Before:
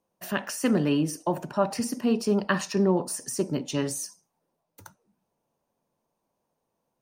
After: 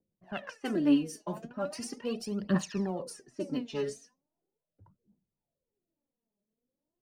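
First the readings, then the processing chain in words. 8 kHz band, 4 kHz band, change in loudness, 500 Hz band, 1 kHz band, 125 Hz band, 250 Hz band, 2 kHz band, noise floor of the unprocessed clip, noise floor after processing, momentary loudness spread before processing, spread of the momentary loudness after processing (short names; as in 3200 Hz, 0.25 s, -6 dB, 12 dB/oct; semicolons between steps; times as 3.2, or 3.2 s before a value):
-12.0 dB, -7.5 dB, -6.5 dB, -8.0 dB, -10.5 dB, -7.5 dB, -5.0 dB, -10.0 dB, -80 dBFS, under -85 dBFS, 7 LU, 14 LU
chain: low-pass opened by the level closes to 450 Hz, open at -22.5 dBFS; phaser 0.39 Hz, delay 5 ms, feedback 75%; rotary speaker horn 5.5 Hz, later 1.2 Hz, at 0.52; gain -7 dB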